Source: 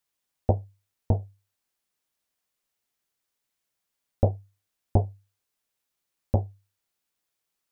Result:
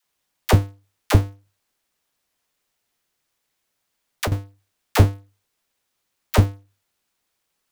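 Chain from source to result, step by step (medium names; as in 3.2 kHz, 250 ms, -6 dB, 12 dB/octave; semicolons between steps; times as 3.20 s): square wave that keeps the level; phase dispersion lows, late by 46 ms, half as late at 550 Hz; 1.20–4.32 s: compression 16:1, threshold -26 dBFS, peak gain reduction 15.5 dB; trim +4 dB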